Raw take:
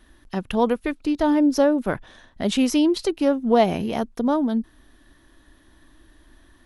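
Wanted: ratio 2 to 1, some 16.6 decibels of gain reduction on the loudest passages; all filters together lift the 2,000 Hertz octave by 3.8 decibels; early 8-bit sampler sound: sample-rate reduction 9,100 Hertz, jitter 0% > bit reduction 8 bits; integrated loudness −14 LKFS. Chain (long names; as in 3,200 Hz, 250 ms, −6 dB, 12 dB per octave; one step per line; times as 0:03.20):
parametric band 2,000 Hz +5 dB
downward compressor 2 to 1, threshold −44 dBFS
sample-rate reduction 9,100 Hz, jitter 0%
bit reduction 8 bits
level +22 dB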